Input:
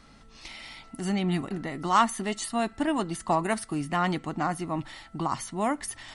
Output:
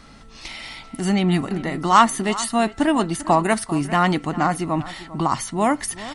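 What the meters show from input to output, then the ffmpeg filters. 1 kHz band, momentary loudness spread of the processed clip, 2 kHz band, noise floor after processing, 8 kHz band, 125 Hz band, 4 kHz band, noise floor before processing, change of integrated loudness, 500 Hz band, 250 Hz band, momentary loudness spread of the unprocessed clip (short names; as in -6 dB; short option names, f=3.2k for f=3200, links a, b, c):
+8.0 dB, 16 LU, +8.0 dB, -45 dBFS, +8.0 dB, +8.0 dB, +8.0 dB, -53 dBFS, +8.0 dB, +8.0 dB, +8.0 dB, 16 LU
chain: -filter_complex "[0:a]asplit=2[a][b];[b]adelay=396.5,volume=-16dB,highshelf=f=4k:g=-8.92[c];[a][c]amix=inputs=2:normalize=0,volume=8dB"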